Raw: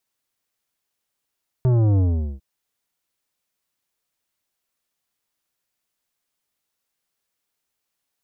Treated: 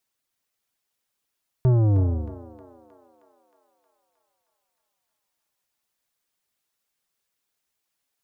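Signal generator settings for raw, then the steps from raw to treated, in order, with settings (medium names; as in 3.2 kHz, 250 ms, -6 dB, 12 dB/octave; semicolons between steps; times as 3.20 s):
sub drop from 130 Hz, over 0.75 s, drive 11.5 dB, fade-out 0.42 s, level -15.5 dB
reverb removal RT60 0.54 s; thinning echo 313 ms, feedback 71%, high-pass 470 Hz, level -7 dB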